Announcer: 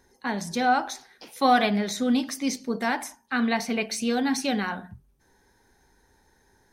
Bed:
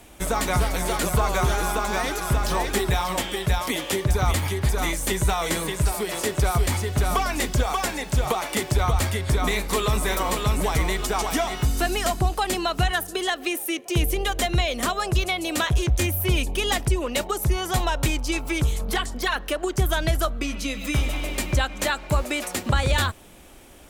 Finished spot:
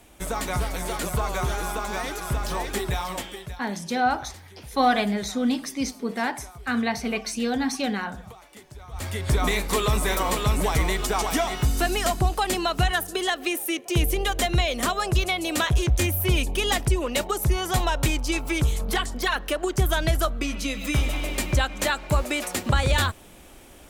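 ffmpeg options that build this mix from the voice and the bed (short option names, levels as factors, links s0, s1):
-filter_complex "[0:a]adelay=3350,volume=0.944[s0];[1:a]volume=7.5,afade=t=out:st=3.07:d=0.55:silence=0.133352,afade=t=in:st=8.9:d=0.42:silence=0.0794328[s1];[s0][s1]amix=inputs=2:normalize=0"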